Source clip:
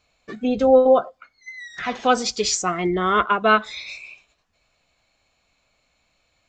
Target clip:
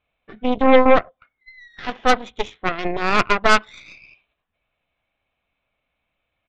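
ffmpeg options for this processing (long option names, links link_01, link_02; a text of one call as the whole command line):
ffmpeg -i in.wav -af "aresample=8000,aresample=44100,aeval=exprs='0.668*(cos(1*acos(clip(val(0)/0.668,-1,1)))-cos(1*PI/2))+0.0473*(cos(3*acos(clip(val(0)/0.668,-1,1)))-cos(3*PI/2))+0.133*(cos(6*acos(clip(val(0)/0.668,-1,1)))-cos(6*PI/2))+0.0422*(cos(7*acos(clip(val(0)/0.668,-1,1)))-cos(7*PI/2))':channel_layout=same,volume=1.5dB" out.wav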